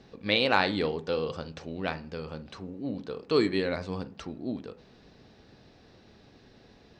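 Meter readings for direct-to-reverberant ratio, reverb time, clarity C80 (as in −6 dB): 12.0 dB, 0.45 s, 23.0 dB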